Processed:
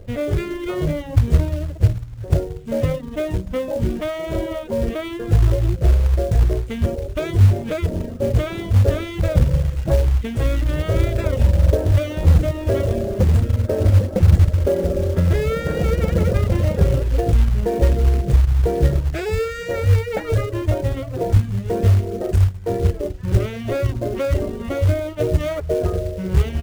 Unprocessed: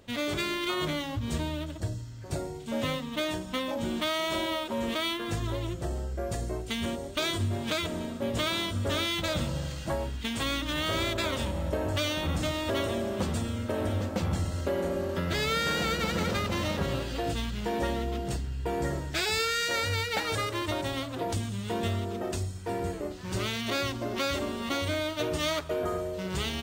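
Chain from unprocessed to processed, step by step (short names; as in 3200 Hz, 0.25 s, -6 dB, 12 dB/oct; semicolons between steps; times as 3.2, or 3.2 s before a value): RIAA curve playback; reverb removal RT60 0.83 s; ten-band EQ 250 Hz -8 dB, 500 Hz +8 dB, 1000 Hz -9 dB, 4000 Hz -11 dB; in parallel at +1.5 dB: short-mantissa float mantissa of 2-bit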